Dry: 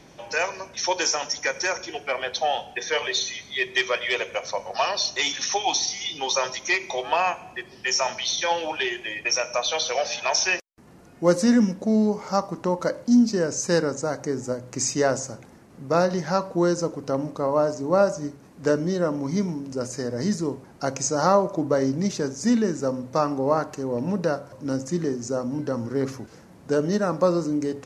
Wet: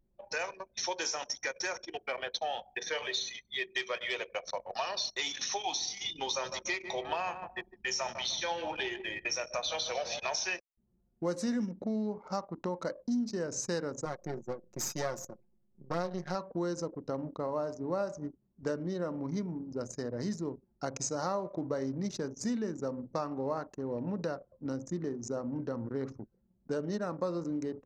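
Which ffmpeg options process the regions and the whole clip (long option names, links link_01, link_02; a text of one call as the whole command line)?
ffmpeg -i in.wav -filter_complex "[0:a]asettb=1/sr,asplit=3[link_01][link_02][link_03];[link_01]atrim=end=6.044[link_04];[link_02]atrim=start=6.04:end=10.36,asetpts=PTS-STARTPTS,afade=type=in:duration=0.004:curve=qsin,afade=type=out:start_time=4.316:duration=0.004:curve=qsin,lowshelf=frequency=160:gain=9,asplit=2[link_05][link_06];[link_06]adelay=152,lowpass=frequency=2000:poles=1,volume=-11dB,asplit=2[link_07][link_08];[link_08]adelay=152,lowpass=frequency=2000:poles=1,volume=0.41,asplit=2[link_09][link_10];[link_10]adelay=152,lowpass=frequency=2000:poles=1,volume=0.41,asplit=2[link_11][link_12];[link_12]adelay=152,lowpass=frequency=2000:poles=1,volume=0.41[link_13];[link_05][link_07][link_09][link_11][link_13]amix=inputs=5:normalize=0,atrim=end_sample=190512[link_14];[link_03]atrim=start=10.356[link_15];[link_04][link_14]acrossfade=duration=0.004:curve1=hsin:curve2=qsin[link_16];[link_16][link_15]acrossfade=duration=0.004:curve1=qsin:curve2=hsin,asettb=1/sr,asplit=3[link_17][link_18][link_19];[link_17]atrim=end=14.054[link_20];[link_18]atrim=start=14.05:end=16.35,asetpts=PTS-STARTPTS,afade=type=in:duration=0.004:curve=qsin,afade=type=out:start_time=2.296:duration=0.004:curve=qsin,aeval=exprs='if(lt(val(0),0),0.251*val(0),val(0))':channel_layout=same,lowshelf=frequency=67:gain=-8,aecho=1:1:5.6:0.67,atrim=end_sample=101430[link_21];[link_19]atrim=start=16.346[link_22];[link_20][link_21]acrossfade=duration=0.004:curve1=hsin:curve2=qsin[link_23];[link_23][link_22]acrossfade=duration=0.004:curve1=qsin:curve2=hsin,anlmdn=10,equalizer=frequency=3900:width_type=o:width=0.21:gain=5.5,acompressor=threshold=-27dB:ratio=2.5,volume=-6dB" out.wav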